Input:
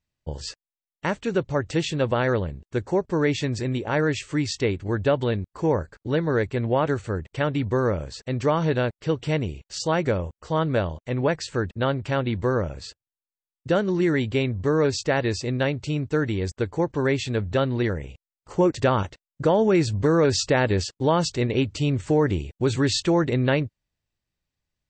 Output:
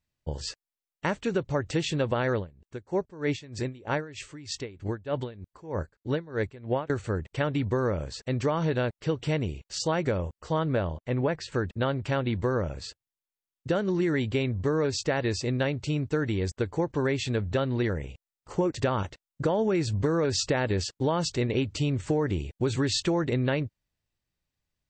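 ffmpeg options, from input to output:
-filter_complex "[0:a]asettb=1/sr,asplit=3[a][b][c];[a]atrim=end=2.374[d];[b]atrim=start=2.37:end=6.9,asetpts=PTS-STARTPTS,afade=t=in:d=0.004:c=qsin,afade=t=out:st=4.526:d=0.004:c=qsin,aeval=exprs='val(0)*pow(10,-21*(0.5-0.5*cos(2*PI*3.2*n/s))/20)':c=same[e];[c]atrim=start=6.896[f];[d][e]acrossfade=d=0.004:c1=hsin:c2=qsin[g];[g][f]acrossfade=d=0.004:c1=qsin:c2=hsin,asettb=1/sr,asplit=3[h][i][j];[h]atrim=end=10.654[k];[i]atrim=start=10.65:end=11.52,asetpts=PTS-STARTPTS,afade=t=in:d=0.004:c=qsin,afade=t=out:st=0.866:d=0.004:c=qsin,aemphasis=mode=reproduction:type=50fm[l];[j]atrim=start=11.516[m];[k][l]acrossfade=d=0.004:c1=hsin:c2=qsin[n];[n][m]acrossfade=d=0.004:c1=qsin:c2=hsin,acompressor=threshold=-21dB:ratio=6,volume=-1dB"

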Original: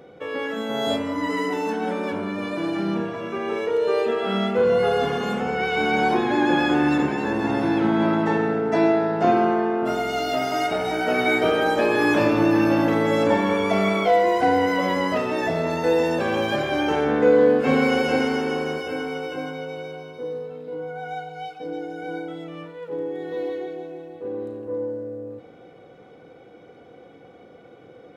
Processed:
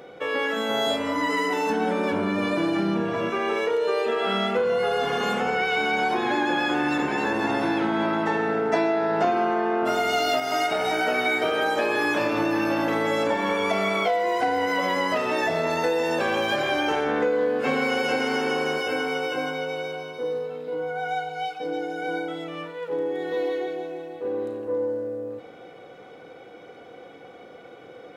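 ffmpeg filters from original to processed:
-filter_complex "[0:a]asettb=1/sr,asplit=3[a][b][c];[a]atrim=end=1.704[d];[b]atrim=start=1.7:end=3.3,asetpts=PTS-STARTPTS,afade=t=in:d=0.004:c=qsin,afade=t=out:st=1.596:d=0.004:c=qsin,lowshelf=f=330:g=10[e];[c]atrim=start=3.296[f];[d][e]acrossfade=d=0.004:c1=hsin:c2=qsin[g];[g][f]acrossfade=d=0.004:c1=qsin:c2=hsin,asplit=3[h][i][j];[h]atrim=end=8.742[k];[i]atrim=start=8.738:end=10.402,asetpts=PTS-STARTPTS,volume=6dB[l];[j]atrim=start=10.398[m];[k][l]acrossfade=d=0.004:c1=hsin:c2=hsin[n];[n][m]acrossfade=d=0.004:c1=hsin:c2=hsin,lowshelf=f=360:g=-11,acompressor=threshold=-27dB:ratio=6,volume=6.5dB"

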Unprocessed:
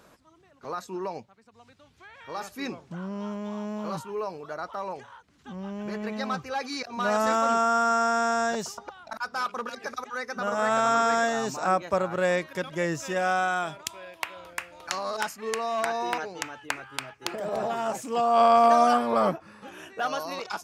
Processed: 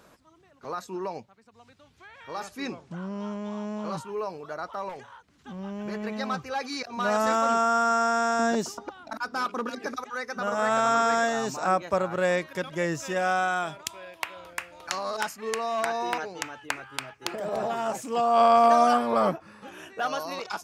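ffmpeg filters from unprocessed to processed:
-filter_complex "[0:a]asettb=1/sr,asplit=3[a][b][c];[a]atrim=end=2.434[d];[b]atrim=start=2.43:end=4.05,asetpts=PTS-STARTPTS,afade=t=in:d=0.004:c=qsin,afade=t=out:st=1.616:d=0.004:c=qsin,lowpass=f=11k:w=0.5412,lowpass=f=11k:w=1.3066[e];[c]atrim=start=4.046[f];[d][e]acrossfade=d=0.004:c1=hsin:c2=qsin[g];[g][f]acrossfade=d=0.004:c1=qsin:c2=hsin,asettb=1/sr,asplit=3[h][i][j];[h]atrim=end=4.894[k];[i]atrim=start=4.89:end=5.59,asetpts=PTS-STARTPTS,afade=t=in:d=0.004:c=qsin,afade=t=out:st=0.696:d=0.004:c=qsin,asoftclip=type=hard:threshold=-35dB[l];[j]atrim=start=5.586[m];[k][l]acrossfade=d=0.004:c1=hsin:c2=qsin[n];[n][m]acrossfade=d=0.004:c1=qsin:c2=hsin,asettb=1/sr,asplit=3[o][p][q];[o]atrim=end=8.394[r];[p]atrim=start=8.39:end=9.97,asetpts=PTS-STARTPTS,afade=t=in:d=0.004:c=qsin,afade=t=out:st=1.576:d=0.004:c=qsin,equalizer=f=290:t=o:w=0.77:g=13[s];[q]atrim=start=9.966[t];[r][s]acrossfade=d=0.004:c1=hsin:c2=qsin[u];[u][t]acrossfade=d=0.004:c1=qsin:c2=hsin"

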